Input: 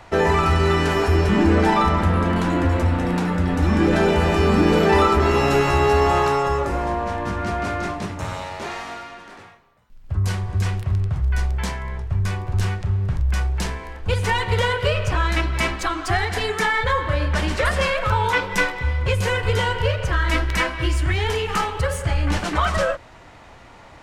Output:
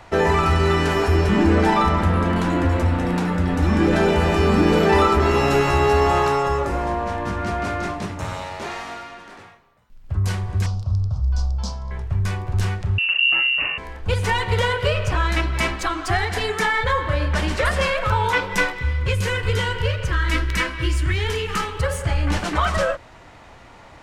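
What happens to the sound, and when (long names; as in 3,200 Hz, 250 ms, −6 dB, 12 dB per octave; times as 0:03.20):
0:10.66–0:11.91: drawn EQ curve 110 Hz 0 dB, 160 Hz −8 dB, 220 Hz 0 dB, 340 Hz −16 dB, 550 Hz −3 dB, 1,300 Hz −7 dB, 1,900 Hz −27 dB, 5,100 Hz +6 dB, 11,000 Hz −17 dB
0:12.98–0:13.78: voice inversion scrambler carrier 2,800 Hz
0:18.73–0:21.80: parametric band 730 Hz −10.5 dB 0.69 octaves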